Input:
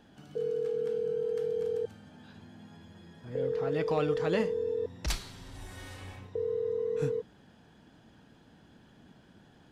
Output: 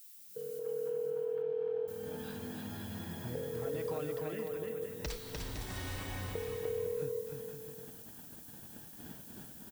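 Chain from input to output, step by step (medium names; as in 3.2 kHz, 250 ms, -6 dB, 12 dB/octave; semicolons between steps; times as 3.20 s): fade-in on the opening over 2.06 s; gate -56 dBFS, range -16 dB; compression 8:1, threshold -45 dBFS, peak gain reduction 20 dB; added noise violet -61 dBFS; 0.59–1.88 s: cabinet simulation 130–2800 Hz, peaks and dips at 220 Hz -7 dB, 640 Hz +9 dB, 960 Hz +9 dB, 1.4 kHz +3 dB, 2 kHz -3 dB; 4.18–4.82 s: static phaser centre 2.1 kHz, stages 4; on a send: bouncing-ball echo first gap 300 ms, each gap 0.7×, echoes 5; on the sum: trim +6.5 dB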